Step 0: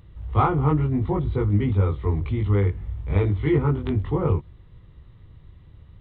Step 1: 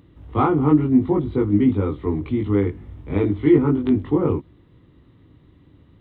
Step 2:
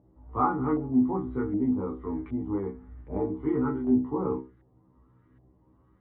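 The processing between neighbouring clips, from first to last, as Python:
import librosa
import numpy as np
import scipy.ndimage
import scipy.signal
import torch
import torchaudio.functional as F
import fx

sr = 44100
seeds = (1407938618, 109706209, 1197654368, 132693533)

y1 = fx.highpass(x, sr, hz=160.0, slope=6)
y1 = fx.peak_eq(y1, sr, hz=280.0, db=14.0, octaves=0.76)
y2 = fx.stiff_resonator(y1, sr, f0_hz=62.0, decay_s=0.36, stiffness=0.002)
y2 = fx.filter_lfo_lowpass(y2, sr, shape='saw_up', hz=1.3, low_hz=700.0, high_hz=1700.0, q=3.0)
y2 = y2 * librosa.db_to_amplitude(-2.0)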